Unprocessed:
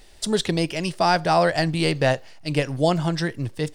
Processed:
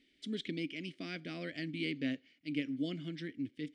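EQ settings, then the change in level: vowel filter i; -2.0 dB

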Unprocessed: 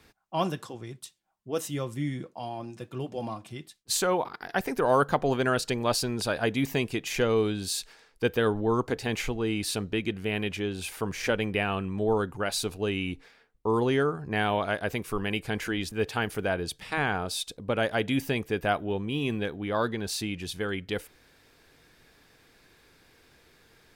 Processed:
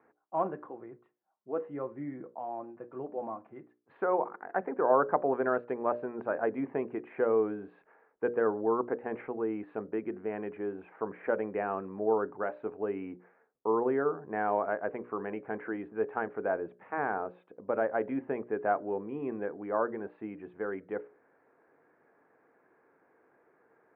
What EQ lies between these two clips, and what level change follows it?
high-pass 360 Hz 12 dB/octave; Bessel low-pass 1 kHz, order 8; hum notches 60/120/180/240/300/360/420/480/540/600 Hz; +1.0 dB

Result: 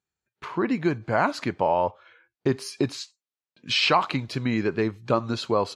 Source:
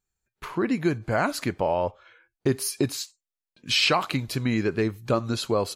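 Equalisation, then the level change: dynamic bell 950 Hz, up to +6 dB, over -40 dBFS, Q 2.4; band-pass 100–5200 Hz; 0.0 dB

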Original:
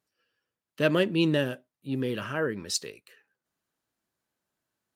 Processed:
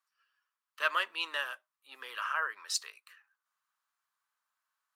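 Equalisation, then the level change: ladder high-pass 1 kHz, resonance 60%; +7.0 dB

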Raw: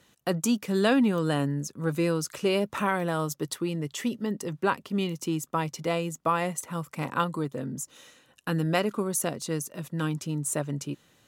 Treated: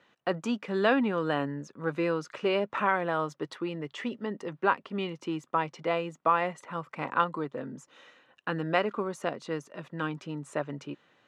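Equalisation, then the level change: high-pass 580 Hz 6 dB/octave; low-pass 2.3 kHz 12 dB/octave; +3.0 dB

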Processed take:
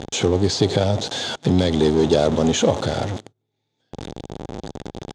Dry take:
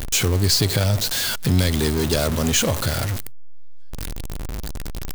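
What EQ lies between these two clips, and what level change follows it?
cabinet simulation 160–8100 Hz, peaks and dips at 810 Hz +8 dB, 3.5 kHz +10 dB, 6.5 kHz +6 dB; tilt EQ -2.5 dB/octave; peaking EQ 450 Hz +8 dB 1.5 oct; -3.5 dB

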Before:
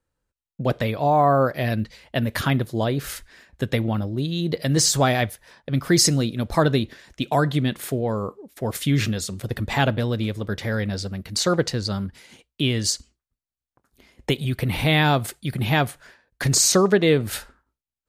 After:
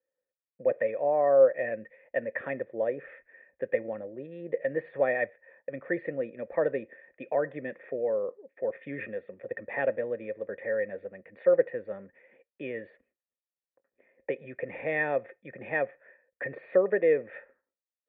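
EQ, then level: cascade formant filter e; three-band isolator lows -17 dB, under 150 Hz, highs -23 dB, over 2.5 kHz; bass shelf 320 Hz -9.5 dB; +7.0 dB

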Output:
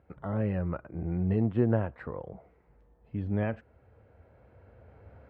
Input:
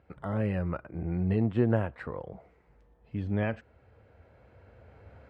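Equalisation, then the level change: treble shelf 2.7 kHz -12 dB; 0.0 dB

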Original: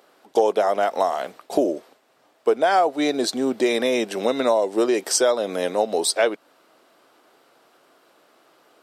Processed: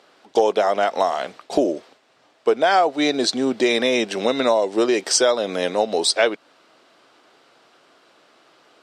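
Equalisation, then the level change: distance through air 95 m; bass shelf 130 Hz +9 dB; treble shelf 2 kHz +10.5 dB; 0.0 dB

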